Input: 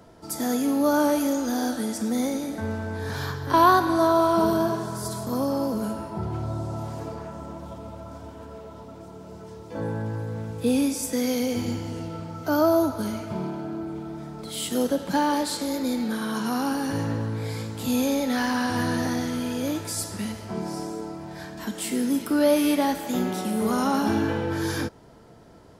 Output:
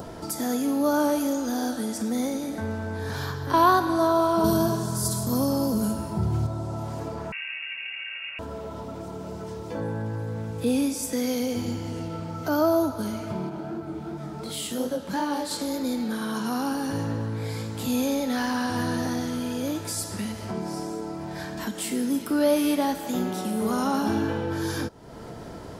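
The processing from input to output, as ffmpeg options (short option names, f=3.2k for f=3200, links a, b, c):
-filter_complex "[0:a]asettb=1/sr,asplit=3[a][b][c];[a]atrim=end=4.444[d];[b]atrim=start=4.44:end=6.47,asetpts=PTS-STARTPTS,afade=t=in:d=0.004:c=qsin,afade=t=out:st=2.026:d=0.004:c=qsin,bass=f=250:g=8,treble=f=4k:g=10[e];[c]atrim=start=6.466[f];[d][e]acrossfade=d=0.004:c1=hsin:c2=qsin[g];[g][f]acrossfade=d=0.004:c1=qsin:c2=hsin,asettb=1/sr,asplit=3[h][i][j];[h]atrim=end=7.324[k];[i]atrim=start=7.32:end=8.39,asetpts=PTS-STARTPTS,afade=t=in:d=0.004:c=qsin,afade=t=out:st=1.066:d=0.004:c=qsin,lowpass=f=2.5k:t=q:w=0.5098,lowpass=f=2.5k:t=q:w=0.6013,lowpass=f=2.5k:t=q:w=0.9,lowpass=f=2.5k:t=q:w=2.563,afreqshift=-2900[l];[j]atrim=start=8.386[m];[k][l]acrossfade=d=0.004:c1=hsin:c2=qsin[n];[n][m]acrossfade=d=0.004:c1=qsin:c2=hsin,asettb=1/sr,asplit=3[o][p][q];[o]atrim=end=13.494[r];[p]atrim=start=13.49:end=15.51,asetpts=PTS-STARTPTS,afade=t=in:d=0.004:c=qsin,afade=t=out:st=2.016:d=0.004:c=qsin,flanger=delay=19.5:depth=6.5:speed=2.8[s];[q]atrim=start=15.506[t];[r][s]acrossfade=d=0.004:c1=hsin:c2=qsin[u];[u][t]acrossfade=d=0.004:c1=qsin:c2=hsin,adynamicequalizer=threshold=0.00501:dfrequency=2100:dqfactor=2.6:tfrequency=2100:tqfactor=2.6:attack=5:release=100:ratio=0.375:range=2:mode=cutabove:tftype=bell,acompressor=mode=upward:threshold=-25dB:ratio=2.5,volume=-1.5dB"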